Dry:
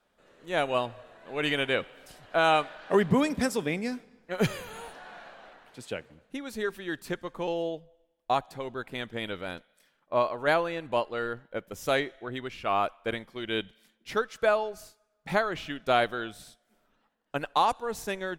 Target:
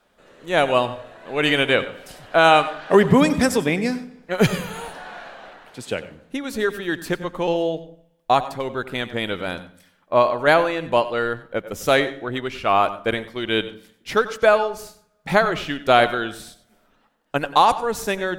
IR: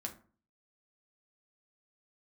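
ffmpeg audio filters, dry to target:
-filter_complex "[0:a]asplit=2[a][b];[1:a]atrim=start_sample=2205,asetrate=36162,aresample=44100,adelay=92[c];[b][c]afir=irnorm=-1:irlink=0,volume=-13.5dB[d];[a][d]amix=inputs=2:normalize=0,volume=9dB"

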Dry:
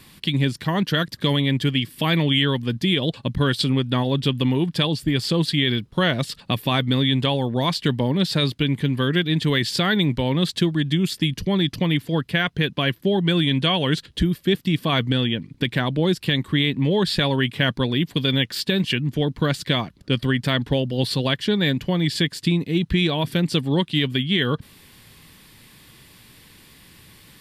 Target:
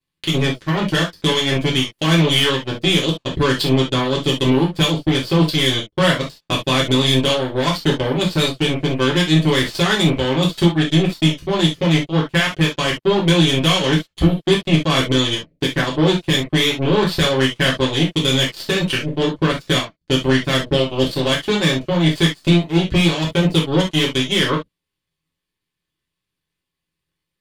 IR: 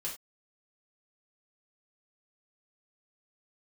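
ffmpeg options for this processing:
-filter_complex "[0:a]aeval=exprs='0.398*(cos(1*acos(clip(val(0)/0.398,-1,1)))-cos(1*PI/2))+0.0251*(cos(4*acos(clip(val(0)/0.398,-1,1)))-cos(4*PI/2))+0.0562*(cos(7*acos(clip(val(0)/0.398,-1,1)))-cos(7*PI/2))':c=same,highshelf=f=10k:g=-7.5[a];[1:a]atrim=start_sample=2205,atrim=end_sample=3528[b];[a][b]afir=irnorm=-1:irlink=0,volume=4dB"

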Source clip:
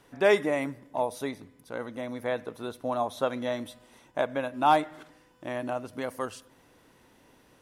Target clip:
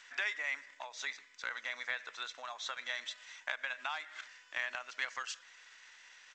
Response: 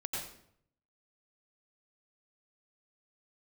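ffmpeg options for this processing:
-af "highshelf=f=5.1k:g=8,acompressor=threshold=-32dB:ratio=16,highpass=f=1.8k:t=q:w=2,atempo=1.2,volume=3.5dB" -ar 16000 -c:a g722

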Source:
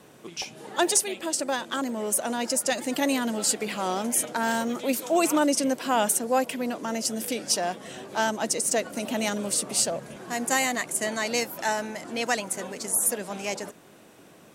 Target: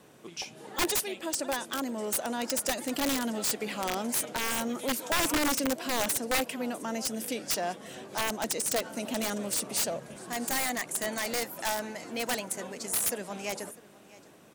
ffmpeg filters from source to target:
-af "aecho=1:1:651:0.0944,aeval=exprs='(mod(7.08*val(0)+1,2)-1)/7.08':c=same,volume=-4dB"

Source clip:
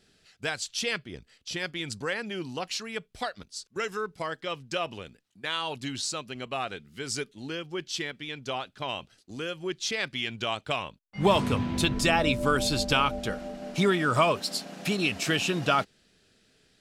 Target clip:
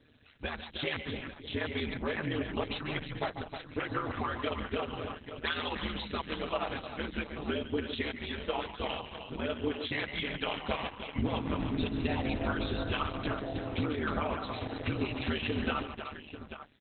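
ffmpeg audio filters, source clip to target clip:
-filter_complex "[0:a]asettb=1/sr,asplit=3[a][b][c];[a]atrim=end=3.954[d];[b]atrim=start=3.95:end=4.64,asetpts=PTS-STARTPTS,afade=t=in:d=0.004:c=qsin,afade=t=out:st=0.686:d=0.004:c=qsin,aeval=exprs='val(0)+0.5*0.0119*sgn(val(0))':c=same[e];[c]atrim=start=4.636[f];[d][e]acrossfade=d=0.004:c1=hsin:c2=qsin[g];[g][f]acrossfade=d=0.004:c1=qsin:c2=hsin,aemphasis=mode=reproduction:type=cd,aecho=1:1:5.6:0.85,asettb=1/sr,asplit=3[h][i][j];[h]atrim=end=11.904[k];[i]atrim=start=11.9:end=12.37,asetpts=PTS-STARTPTS,afade=t=in:d=0.004:c=qsin,afade=t=out:st=0.466:d=0.004:c=qsin,adynamicequalizer=threshold=0.00708:dfrequency=200:dqfactor=4.9:tfrequency=200:tqfactor=4.9:attack=5:release=100:ratio=0.375:range=3:mode=boostabove:tftype=bell[l];[j]atrim=start=12.366[m];[k][l]acrossfade=d=0.004:c1=hsin:c2=qsin[n];[n][m]acrossfade=d=0.004:c1=qsin:c2=hsin,acompressor=threshold=-30dB:ratio=10,asettb=1/sr,asplit=3[o][p][q];[o]atrim=end=2.594[r];[p]atrim=start=2.59:end=3.23,asetpts=PTS-STARTPTS,afade=t=in:d=0.004:c=qsin,afade=t=out:st=0.636:d=0.004:c=qsin,aeval=exprs='val(0)+0.00447*(sin(2*PI*50*n/s)+sin(2*PI*2*50*n/s)/2+sin(2*PI*3*50*n/s)/3+sin(2*PI*4*50*n/s)/4+sin(2*PI*5*50*n/s)/5)':c=same[s];[q]atrim=start=3.226[t];[r][s]acrossfade=d=0.004:c1=hsin:c2=qsin[u];[u][t]acrossfade=d=0.004:c1=qsin:c2=hsin,aeval=exprs='val(0)*sin(2*PI*76*n/s)':c=same,aecho=1:1:142|143|147|312|661|840:0.119|0.299|0.112|0.376|0.119|0.266,aresample=32000,aresample=44100,volume=5dB" -ar 48000 -c:a libopus -b:a 8k

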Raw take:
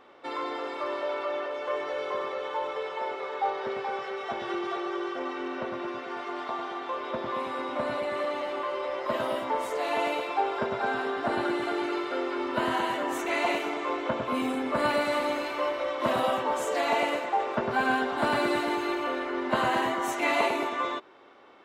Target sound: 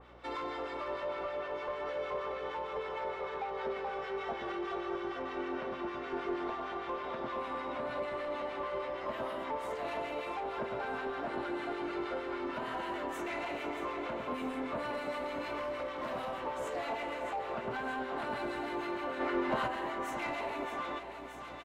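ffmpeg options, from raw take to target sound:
-filter_complex "[0:a]acompressor=threshold=-30dB:ratio=6,asettb=1/sr,asplit=3[a][b][c];[a]atrim=end=6.124[d];[b]atrim=start=6.12:end=6.55,asetpts=PTS-STARTPTS,afade=t=in:d=0.004:c=qsin,afade=t=out:st=0.426:d=0.004:c=qsin,equalizer=f=360:t=o:w=0.77:g=8.5[e];[c]atrim=start=6.546[f];[d][e]acrossfade=d=0.004:c1=hsin:c2=qsin[g];[g][f]acrossfade=d=0.004:c1=qsin:c2=hsin,asoftclip=type=tanh:threshold=-28.5dB,asplit=3[h][i][j];[h]afade=t=out:st=19.19:d=0.02[k];[i]acontrast=36,afade=t=in:st=19.19:d=0.02,afade=t=out:st=19.66:d=0.02[l];[j]afade=t=in:st=19.66:d=0.02[m];[k][l][m]amix=inputs=3:normalize=0,aeval=exprs='val(0)+0.00141*(sin(2*PI*60*n/s)+sin(2*PI*2*60*n/s)/2+sin(2*PI*3*60*n/s)/3+sin(2*PI*4*60*n/s)/4+sin(2*PI*5*60*n/s)/5)':c=same,aecho=1:1:628|1256|1884|2512|3140|3768|4396:0.316|0.187|0.11|0.0649|0.0383|0.0226|0.0133,acrossover=split=1100[n][o];[n]aeval=exprs='val(0)*(1-0.5/2+0.5/2*cos(2*PI*6.5*n/s))':c=same[p];[o]aeval=exprs='val(0)*(1-0.5/2-0.5/2*cos(2*PI*6.5*n/s))':c=same[q];[p][q]amix=inputs=2:normalize=0,asettb=1/sr,asplit=3[r][s][t];[r]atrim=end=15.574[u];[s]atrim=start=15.57:end=16.47,asetpts=PTS-STARTPTS,afade=t=in:d=0.004:c=qsin,afade=t=out:st=0.896:d=0.004:c=qsin,volume=33dB,asoftclip=hard,volume=-33dB[v];[t]atrim=start=16.466[w];[u][v]acrossfade=d=0.004:c1=hsin:c2=qsin[x];[x][w]acrossfade=d=0.004:c1=qsin:c2=hsin,adynamicequalizer=threshold=0.00282:dfrequency=3400:dqfactor=0.7:tfrequency=3400:tqfactor=0.7:attack=5:release=100:ratio=0.375:range=3:mode=cutabove:tftype=highshelf"

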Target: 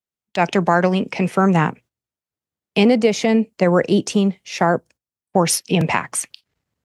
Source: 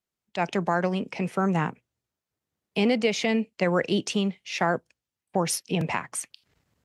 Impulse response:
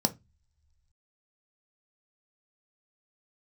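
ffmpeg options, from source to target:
-filter_complex "[0:a]agate=range=-15dB:threshold=-51dB:ratio=16:detection=peak,asettb=1/sr,asplit=3[a][b][c];[a]atrim=end=2.834[d];[b]atrim=start=2.83:end=5.37,asetpts=PTS-STARTPTS,afade=t=in:d=0.004:c=qsin,afade=t=out:st=2.536:d=0.004:c=qsin,equalizer=f=2.8k:t=o:w=1.8:g=-8[e];[c]atrim=start=5.366[f];[d][e]acrossfade=d=0.004:c1=hsin:c2=qsin[g];[g][f]acrossfade=d=0.004:c1=qsin:c2=hsin,volume=9dB"

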